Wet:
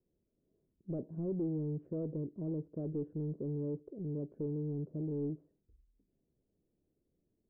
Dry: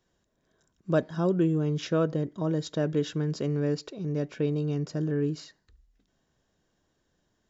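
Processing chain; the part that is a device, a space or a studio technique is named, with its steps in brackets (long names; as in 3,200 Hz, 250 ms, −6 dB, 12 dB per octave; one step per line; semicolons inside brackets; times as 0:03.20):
overdriven synthesiser ladder filter (soft clipping −27 dBFS, distortion −10 dB; transistor ladder low-pass 520 Hz, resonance 30%)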